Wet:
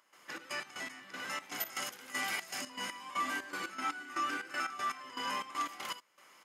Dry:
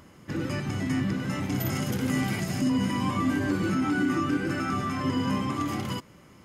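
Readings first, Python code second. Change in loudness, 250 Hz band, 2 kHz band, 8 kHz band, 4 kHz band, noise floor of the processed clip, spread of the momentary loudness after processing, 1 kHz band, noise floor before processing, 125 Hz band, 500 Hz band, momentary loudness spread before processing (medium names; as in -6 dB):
-10.0 dB, -24.0 dB, -3.5 dB, -3.0 dB, -2.5 dB, -63 dBFS, 7 LU, -4.0 dB, -53 dBFS, -34.0 dB, -14.0 dB, 5 LU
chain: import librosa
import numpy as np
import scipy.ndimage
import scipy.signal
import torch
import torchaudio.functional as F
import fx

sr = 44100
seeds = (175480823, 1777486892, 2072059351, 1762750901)

y = scipy.signal.sosfilt(scipy.signal.butter(2, 890.0, 'highpass', fs=sr, output='sos'), x)
y = fx.step_gate(y, sr, bpm=119, pattern='.xx.x.x.', floor_db=-12.0, edge_ms=4.5)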